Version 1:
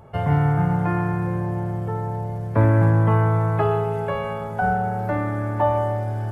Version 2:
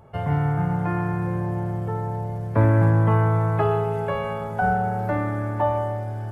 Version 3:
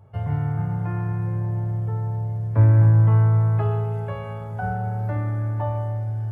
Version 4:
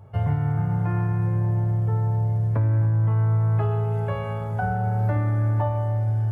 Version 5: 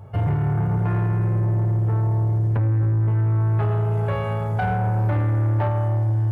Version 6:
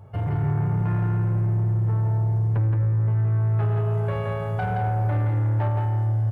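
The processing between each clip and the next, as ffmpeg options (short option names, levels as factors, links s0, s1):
-af "dynaudnorm=f=210:g=11:m=1.58,volume=0.668"
-af "equalizer=f=100:t=o:w=0.72:g=14.5,volume=0.398"
-af "alimiter=limit=0.112:level=0:latency=1:release=400,volume=1.58"
-af "asoftclip=type=tanh:threshold=0.0794,volume=1.88"
-af "aecho=1:1:171:0.596,volume=0.596"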